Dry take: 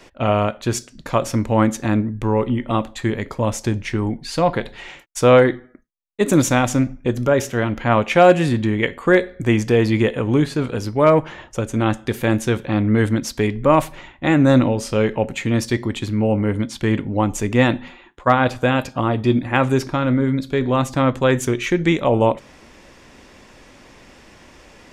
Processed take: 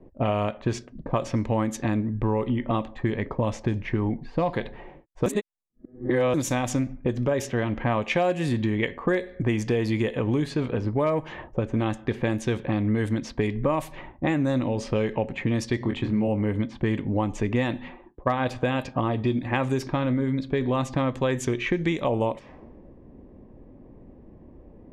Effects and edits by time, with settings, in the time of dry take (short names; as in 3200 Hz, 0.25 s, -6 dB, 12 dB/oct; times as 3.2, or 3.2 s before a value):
5.26–6.34 reverse
15.78–16.28 doubler 24 ms -4.5 dB
whole clip: low-pass opened by the level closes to 340 Hz, open at -13 dBFS; notch 1400 Hz, Q 7.4; compressor 5:1, threshold -24 dBFS; gain +2 dB